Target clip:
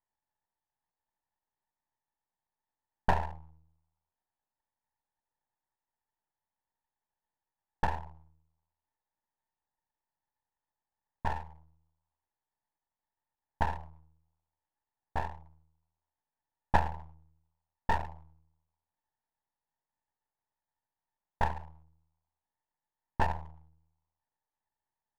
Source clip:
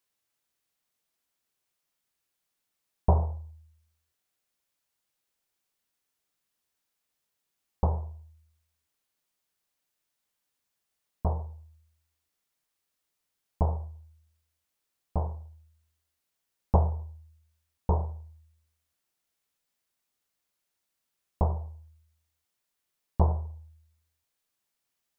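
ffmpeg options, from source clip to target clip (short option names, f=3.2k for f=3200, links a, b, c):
-af "lowpass=f=890:t=q:w=9.5,aeval=exprs='max(val(0),0)':c=same,volume=-6dB"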